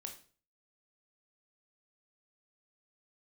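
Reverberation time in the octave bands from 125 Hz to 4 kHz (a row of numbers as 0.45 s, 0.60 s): 0.55 s, 0.45 s, 0.45 s, 0.40 s, 0.40 s, 0.40 s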